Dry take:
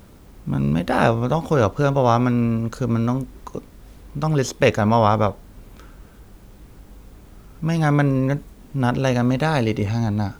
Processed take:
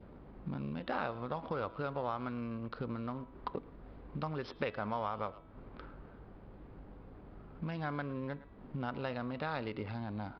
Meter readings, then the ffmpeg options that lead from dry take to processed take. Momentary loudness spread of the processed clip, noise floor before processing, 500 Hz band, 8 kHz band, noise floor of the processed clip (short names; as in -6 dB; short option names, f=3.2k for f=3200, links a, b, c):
17 LU, -46 dBFS, -18.5 dB, under -35 dB, -55 dBFS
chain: -filter_complex "[0:a]adynamicsmooth=sensitivity=7:basefreq=1.2k,adynamicequalizer=threshold=0.02:dfrequency=1200:dqfactor=1.9:tfrequency=1200:tqfactor=1.9:attack=5:release=100:ratio=0.375:range=2.5:mode=boostabove:tftype=bell,bandreject=f=326:t=h:w=4,bandreject=f=652:t=h:w=4,bandreject=f=978:t=h:w=4,bandreject=f=1.304k:t=h:w=4,bandreject=f=1.63k:t=h:w=4,bandreject=f=1.956k:t=h:w=4,bandreject=f=2.282k:t=h:w=4,bandreject=f=2.608k:t=h:w=4,bandreject=f=2.934k:t=h:w=4,bandreject=f=3.26k:t=h:w=4,bandreject=f=3.586k:t=h:w=4,bandreject=f=3.912k:t=h:w=4,asplit=2[a][b];[b]adelay=110,highpass=300,lowpass=3.4k,asoftclip=type=hard:threshold=-11dB,volume=-21dB[c];[a][c]amix=inputs=2:normalize=0,acompressor=threshold=-30dB:ratio=12,aresample=11025,aresample=44100,aeval=exprs='val(0)+0.00282*(sin(2*PI*50*n/s)+sin(2*PI*2*50*n/s)/2+sin(2*PI*3*50*n/s)/3+sin(2*PI*4*50*n/s)/4+sin(2*PI*5*50*n/s)/5)':c=same,lowshelf=f=190:g=-9.5,volume=-1.5dB"